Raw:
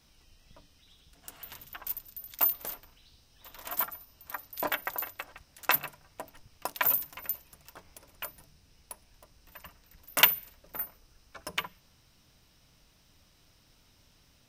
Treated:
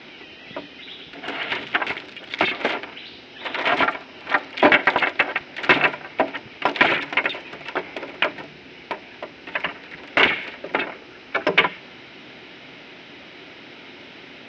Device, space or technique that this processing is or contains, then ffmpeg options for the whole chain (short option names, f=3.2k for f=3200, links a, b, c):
overdrive pedal into a guitar cabinet: -filter_complex "[0:a]asplit=2[a][b];[b]highpass=f=720:p=1,volume=35dB,asoftclip=type=tanh:threshold=-2dB[c];[a][c]amix=inputs=2:normalize=0,lowpass=f=3k:p=1,volume=-6dB,highpass=94,equalizer=f=97:t=q:w=4:g=-4,equalizer=f=260:t=q:w=4:g=7,equalizer=f=370:t=q:w=4:g=10,equalizer=f=1.1k:t=q:w=4:g=-8,equalizer=f=2.2k:t=q:w=4:g=5,lowpass=f=3.6k:w=0.5412,lowpass=f=3.6k:w=1.3066"